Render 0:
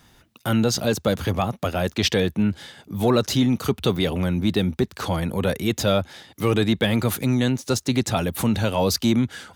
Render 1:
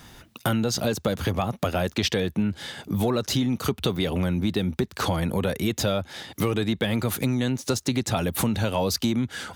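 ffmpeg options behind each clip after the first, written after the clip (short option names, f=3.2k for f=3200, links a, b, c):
-af "acompressor=threshold=-29dB:ratio=5,volume=7dB"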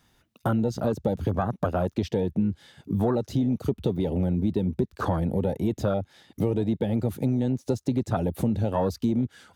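-af "afwtdn=0.0501"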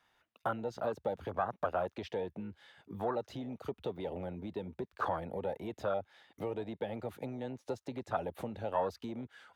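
-filter_complex "[0:a]acrossover=split=510 3300:gain=0.141 1 0.224[a][b][c];[a][b][c]amix=inputs=3:normalize=0,volume=-3dB"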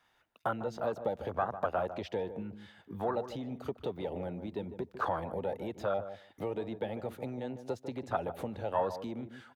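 -filter_complex "[0:a]asplit=2[a][b];[b]adelay=150,lowpass=f=870:p=1,volume=-9.5dB,asplit=2[c][d];[d]adelay=150,lowpass=f=870:p=1,volume=0.15[e];[a][c][e]amix=inputs=3:normalize=0,volume=1.5dB"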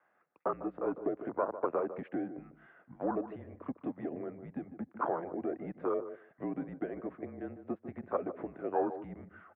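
-af "highpass=f=250:t=q:w=0.5412,highpass=f=250:t=q:w=1.307,lowpass=f=2.2k:t=q:w=0.5176,lowpass=f=2.2k:t=q:w=0.7071,lowpass=f=2.2k:t=q:w=1.932,afreqshift=-160,highpass=160"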